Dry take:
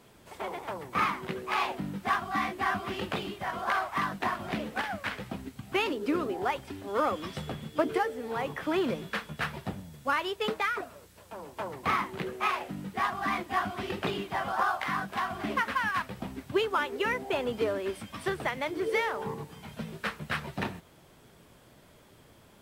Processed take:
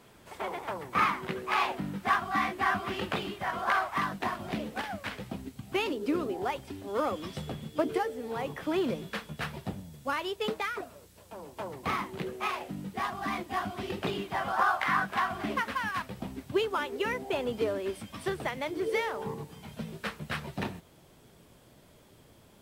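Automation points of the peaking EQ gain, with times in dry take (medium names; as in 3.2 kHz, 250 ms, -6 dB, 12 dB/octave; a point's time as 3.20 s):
peaking EQ 1.5 kHz 1.7 oct
3.79 s +2 dB
4.43 s -5 dB
13.95 s -5 dB
15.03 s +6.5 dB
15.67 s -4 dB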